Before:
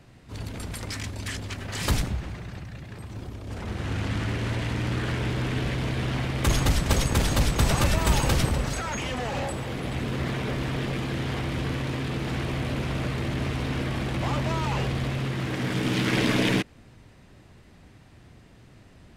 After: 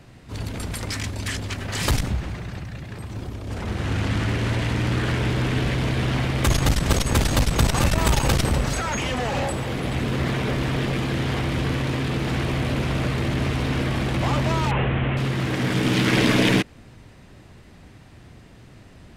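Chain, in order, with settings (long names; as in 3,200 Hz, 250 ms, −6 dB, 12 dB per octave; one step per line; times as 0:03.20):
0:14.71–0:15.17: linear delta modulator 16 kbit/s, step −28 dBFS
saturating transformer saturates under 140 Hz
level +5 dB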